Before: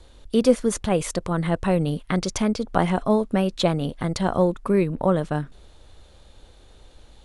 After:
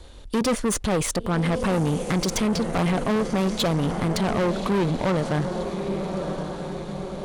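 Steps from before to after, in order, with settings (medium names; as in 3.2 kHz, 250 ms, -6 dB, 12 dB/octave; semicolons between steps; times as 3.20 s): echo that smears into a reverb 1155 ms, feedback 52%, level -12 dB; valve stage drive 26 dB, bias 0.45; trim +7 dB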